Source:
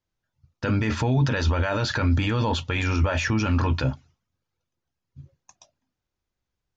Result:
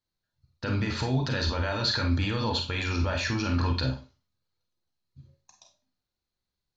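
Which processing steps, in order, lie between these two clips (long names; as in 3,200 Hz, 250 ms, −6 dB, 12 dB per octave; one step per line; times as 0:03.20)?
parametric band 4,200 Hz +14 dB 0.28 octaves
four-comb reverb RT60 0.31 s, combs from 31 ms, DRR 3.5 dB
level −6 dB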